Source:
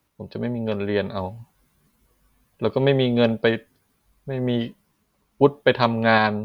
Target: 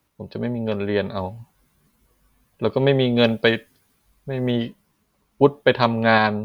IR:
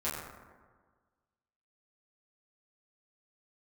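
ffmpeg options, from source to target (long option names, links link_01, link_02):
-filter_complex "[0:a]asplit=3[link_01][link_02][link_03];[link_01]afade=type=out:start_time=3.17:duration=0.02[link_04];[link_02]adynamicequalizer=threshold=0.0141:dfrequency=1700:dqfactor=0.7:tfrequency=1700:tqfactor=0.7:attack=5:release=100:ratio=0.375:range=3:mode=boostabove:tftype=highshelf,afade=type=in:start_time=3.17:duration=0.02,afade=type=out:start_time=4.5:duration=0.02[link_05];[link_03]afade=type=in:start_time=4.5:duration=0.02[link_06];[link_04][link_05][link_06]amix=inputs=3:normalize=0,volume=1dB"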